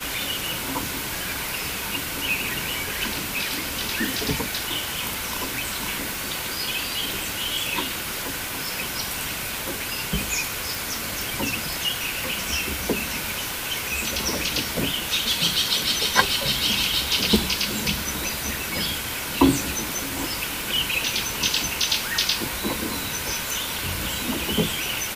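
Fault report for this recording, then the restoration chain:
10.75 s: pop
20.61 s: pop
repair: de-click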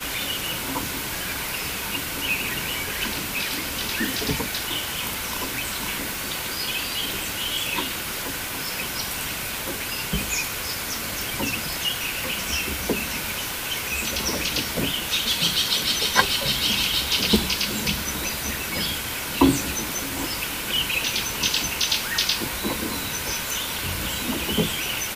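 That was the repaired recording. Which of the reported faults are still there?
nothing left

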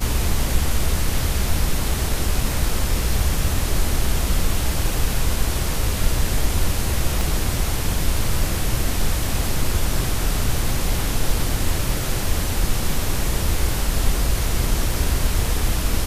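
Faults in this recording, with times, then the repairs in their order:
7.21 s: pop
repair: de-click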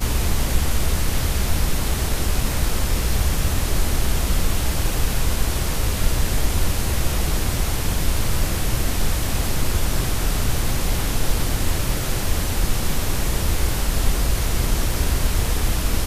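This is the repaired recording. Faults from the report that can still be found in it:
7.21 s: pop

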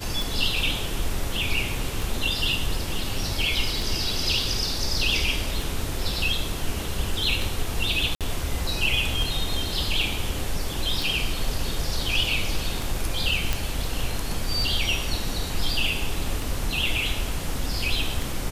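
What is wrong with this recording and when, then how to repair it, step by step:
tick 33 1/3 rpm
8.15–8.21 s: dropout 57 ms
13.53 s: pop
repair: de-click; interpolate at 8.15 s, 57 ms

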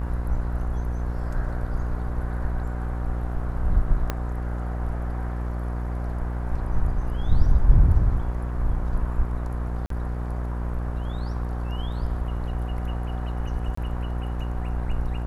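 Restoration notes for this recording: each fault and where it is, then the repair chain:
buzz 60 Hz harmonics 29 -28 dBFS
4.10 s: pop -11 dBFS
9.86–9.90 s: dropout 43 ms
13.75–13.77 s: dropout 24 ms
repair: de-click; de-hum 60 Hz, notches 29; interpolate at 9.86 s, 43 ms; interpolate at 13.75 s, 24 ms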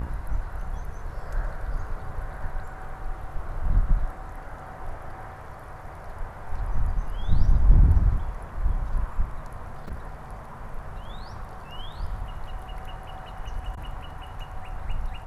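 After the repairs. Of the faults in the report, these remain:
4.10 s: pop

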